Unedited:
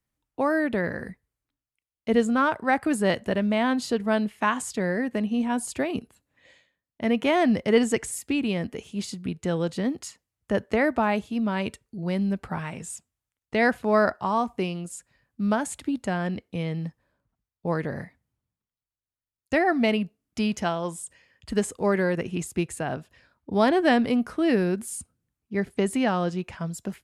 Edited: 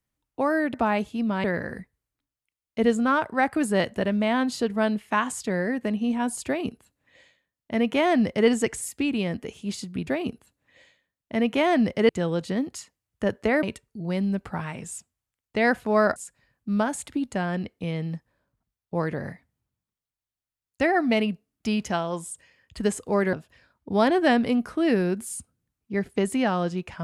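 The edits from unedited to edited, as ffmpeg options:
-filter_complex "[0:a]asplit=8[s0][s1][s2][s3][s4][s5][s6][s7];[s0]atrim=end=0.742[s8];[s1]atrim=start=10.908:end=11.612[s9];[s2]atrim=start=0.738:end=9.372[s10];[s3]atrim=start=5.758:end=7.782[s11];[s4]atrim=start=9.368:end=10.912[s12];[s5]atrim=start=11.608:end=14.142[s13];[s6]atrim=start=14.878:end=22.052[s14];[s7]atrim=start=22.938[s15];[s8][s9]acrossfade=d=0.004:c1=hsin:c2=hsin[s16];[s16][s10]acrossfade=d=0.004:c1=hsin:c2=hsin[s17];[s17][s11]acrossfade=d=0.004:c1=hsin:c2=hsin[s18];[s18][s12]acrossfade=d=0.004:c1=hsin:c2=hsin[s19];[s19][s13]acrossfade=d=0.004:c1=hsin:c2=hsin[s20];[s20][s14]acrossfade=d=0.004:c1=hsin:c2=hsin[s21];[s21][s15]acrossfade=d=0.004:c1=hsin:c2=hsin"

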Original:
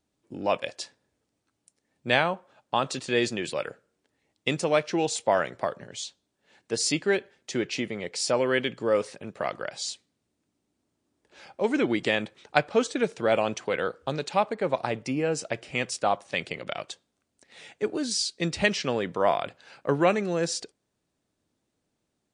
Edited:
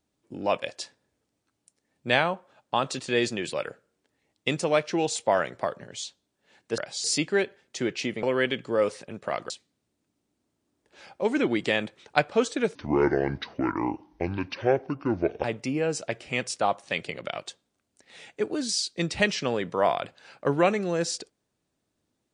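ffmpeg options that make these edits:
-filter_complex "[0:a]asplit=7[s0][s1][s2][s3][s4][s5][s6];[s0]atrim=end=6.782[s7];[s1]atrim=start=9.628:end=9.892[s8];[s2]atrim=start=6.778:end=7.972[s9];[s3]atrim=start=8.358:end=9.632[s10];[s4]atrim=start=9.888:end=13.144[s11];[s5]atrim=start=13.14:end=14.86,asetpts=PTS-STARTPTS,asetrate=28224,aresample=44100[s12];[s6]atrim=start=14.856[s13];[s7][s8]acrossfade=d=0.004:c1=hsin:c2=hsin[s14];[s14][s9]acrossfade=d=0.004:c1=hsin:c2=hsin[s15];[s15][s10]acrossfade=d=0.004:c1=hsin:c2=hsin[s16];[s16][s11]acrossfade=d=0.004:c1=hsin:c2=hsin[s17];[s17][s12]acrossfade=d=0.004:c1=hsin:c2=hsin[s18];[s18][s13]acrossfade=d=0.004:c1=hsin:c2=hsin"

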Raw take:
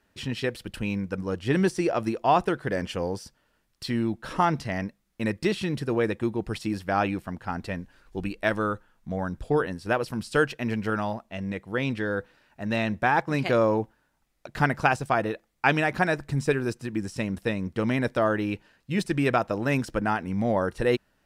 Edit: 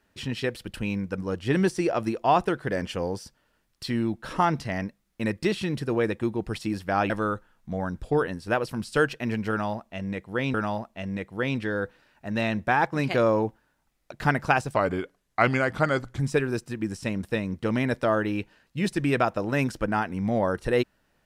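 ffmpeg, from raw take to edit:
-filter_complex "[0:a]asplit=5[s0][s1][s2][s3][s4];[s0]atrim=end=7.102[s5];[s1]atrim=start=8.488:end=11.932[s6];[s2]atrim=start=10.888:end=15.114[s7];[s3]atrim=start=15.11:end=16.33,asetpts=PTS-STARTPTS,asetrate=37485,aresample=44100,atrim=end_sample=63296,asetpts=PTS-STARTPTS[s8];[s4]atrim=start=16.326[s9];[s5][s6]acrossfade=d=0.004:c1=hsin:c2=hsin[s10];[s10][s7]acrossfade=d=0.004:c1=hsin:c2=hsin[s11];[s11][s8]acrossfade=d=0.004:c1=hsin:c2=hsin[s12];[s12][s9]acrossfade=d=0.004:c1=hsin:c2=hsin"

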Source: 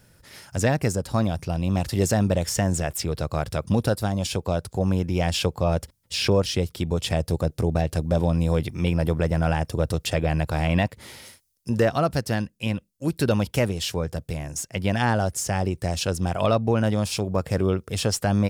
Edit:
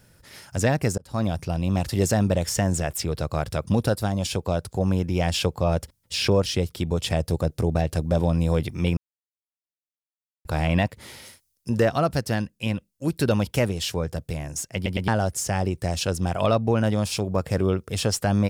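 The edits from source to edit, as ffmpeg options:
-filter_complex "[0:a]asplit=7[s0][s1][s2][s3][s4][s5][s6];[s0]atrim=end=0.98,asetpts=PTS-STARTPTS,afade=t=out:st=0.976:d=0.004:c=hsin[s7];[s1]atrim=start=0.98:end=8.97,asetpts=PTS-STARTPTS,afade=t=in:d=0.3,afade=t=out:st=7.986:d=0.004:c=hsin[s8];[s2]atrim=start=8.97:end=10.45,asetpts=PTS-STARTPTS,volume=0[s9];[s3]atrim=start=10.45:end=14.862,asetpts=PTS-STARTPTS,afade=t=in:d=0.004:c=hsin[s10];[s4]atrim=start=14.748:end=14.862[s11];[s5]atrim=start=14.748:end=14.862[s12];[s6]atrim=start=15.078[s13];[s7][s8][s9][s10]concat=n=4:v=0:a=1[s14];[s14][s11]acrossfade=d=0.004:c1=hsin:c2=hsin[s15];[s15][s12]acrossfade=d=0.004:c1=hsin:c2=hsin[s16];[s16][s13]acrossfade=d=0.004:c1=hsin:c2=hsin"

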